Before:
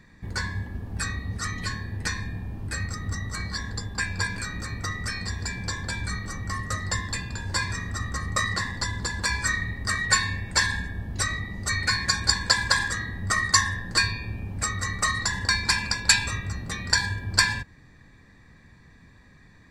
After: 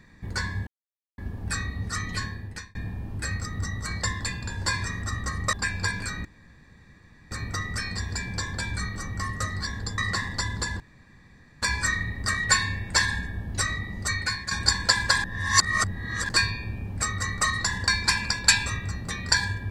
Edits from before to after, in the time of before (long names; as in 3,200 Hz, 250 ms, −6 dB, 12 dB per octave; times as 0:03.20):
0:00.67: splice in silence 0.51 s
0:01.73–0:02.24: fade out
0:03.51–0:03.89: swap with 0:06.90–0:08.41
0:04.61: splice in room tone 1.06 s
0:09.23: splice in room tone 0.82 s
0:11.64–0:12.12: fade out, to −10 dB
0:12.85–0:13.90: reverse